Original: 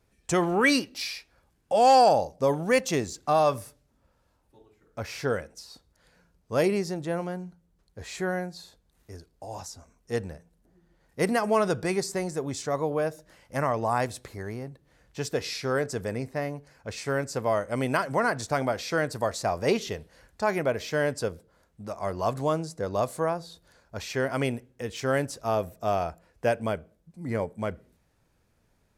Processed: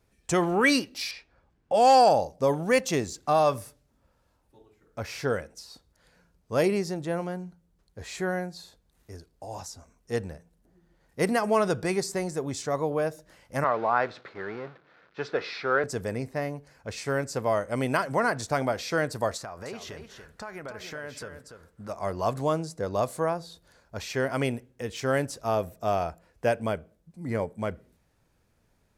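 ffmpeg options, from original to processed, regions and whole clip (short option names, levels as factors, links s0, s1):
-filter_complex "[0:a]asettb=1/sr,asplit=3[s0][s1][s2];[s0]atrim=end=1.114[s3];[s1]atrim=start=1.11:end=1.74,asetpts=PTS-STARTPTS,afade=t=in:d=0.004:c=qsin,afade=t=out:st=0.626:d=0.004:c=qsin,lowpass=9800,aemphasis=mode=reproduction:type=75fm[s4];[s2]atrim=start=1.736[s5];[s3][s4]acrossfade=d=0.004:c1=hsin:c2=qsin[s6];[s6][s5]acrossfade=d=0.004:c1=qsin:c2=hsin,asettb=1/sr,asplit=3[s7][s8][s9];[s7]atrim=end=13.644[s10];[s8]atrim=start=13.64:end=15.84,asetpts=PTS-STARTPTS,afade=t=in:d=0.004:c=qsin,afade=t=out:st=2.196:d=0.004:c=qsin,aeval=exprs='val(0)+0.5*0.0133*sgn(val(0))':c=same,agate=range=0.0224:threshold=0.0178:ratio=3:release=100:detection=peak,highpass=240,equalizer=f=260:t=q:w=4:g=-5,equalizer=f=1400:t=q:w=4:g=9,equalizer=f=3000:t=q:w=4:g=-5,lowpass=f=3800:w=0.5412,lowpass=f=3800:w=1.3066[s11];[s9]atrim=start=15.836[s12];[s10][s11]acrossfade=d=0.004:c1=hsin:c2=qsin[s13];[s13][s12]acrossfade=d=0.004:c1=qsin:c2=hsin,asettb=1/sr,asplit=3[s14][s15][s16];[s14]atrim=end=19.374[s17];[s15]atrim=start=19.37:end=21.89,asetpts=PTS-STARTPTS,afade=t=in:d=0.004:c=qsin,afade=t=out:st=2.516:d=0.004:c=qsin,equalizer=f=1400:t=o:w=0.92:g=9,acompressor=threshold=0.0126:ratio=4:attack=3.2:release=140:knee=1:detection=peak,aecho=1:1:288:0.398,atrim=end_sample=111132[s18];[s16]atrim=start=21.886[s19];[s17][s18]acrossfade=d=0.004:c1=hsin:c2=qsin[s20];[s20][s19]acrossfade=d=0.004:c1=qsin:c2=hsin"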